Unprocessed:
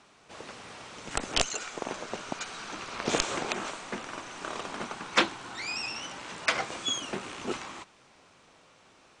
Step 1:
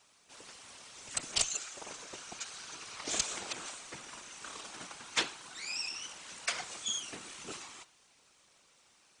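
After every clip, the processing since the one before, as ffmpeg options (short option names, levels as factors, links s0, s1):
-af "bandreject=f=122.6:t=h:w=4,bandreject=f=245.2:t=h:w=4,bandreject=f=367.8:t=h:w=4,bandreject=f=490.4:t=h:w=4,bandreject=f=613:t=h:w=4,bandreject=f=735.6:t=h:w=4,bandreject=f=858.2:t=h:w=4,bandreject=f=980.8:t=h:w=4,bandreject=f=1103.4:t=h:w=4,bandreject=f=1226:t=h:w=4,bandreject=f=1348.6:t=h:w=4,bandreject=f=1471.2:t=h:w=4,bandreject=f=1593.8:t=h:w=4,bandreject=f=1716.4:t=h:w=4,bandreject=f=1839:t=h:w=4,bandreject=f=1961.6:t=h:w=4,bandreject=f=2084.2:t=h:w=4,bandreject=f=2206.8:t=h:w=4,bandreject=f=2329.4:t=h:w=4,bandreject=f=2452:t=h:w=4,bandreject=f=2574.6:t=h:w=4,bandreject=f=2697.2:t=h:w=4,bandreject=f=2819.8:t=h:w=4,bandreject=f=2942.4:t=h:w=4,bandreject=f=3065:t=h:w=4,bandreject=f=3187.6:t=h:w=4,bandreject=f=3310.2:t=h:w=4,bandreject=f=3432.8:t=h:w=4,bandreject=f=3555.4:t=h:w=4,bandreject=f=3678:t=h:w=4,bandreject=f=3800.6:t=h:w=4,bandreject=f=3923.2:t=h:w=4,bandreject=f=4045.8:t=h:w=4,bandreject=f=4168.4:t=h:w=4,bandreject=f=4291:t=h:w=4,bandreject=f=4413.6:t=h:w=4,bandreject=f=4536.2:t=h:w=4,bandreject=f=4658.8:t=h:w=4,bandreject=f=4781.4:t=h:w=4,bandreject=f=4904:t=h:w=4,afftfilt=real='hypot(re,im)*cos(2*PI*random(0))':imag='hypot(re,im)*sin(2*PI*random(1))':win_size=512:overlap=0.75,crystalizer=i=5:c=0,volume=0.422"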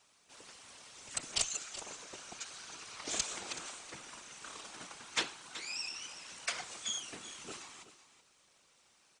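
-af "aecho=1:1:377:0.2,volume=0.75"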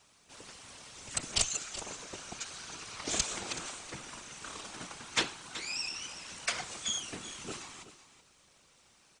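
-af "lowshelf=f=210:g=9.5,volume=1.5"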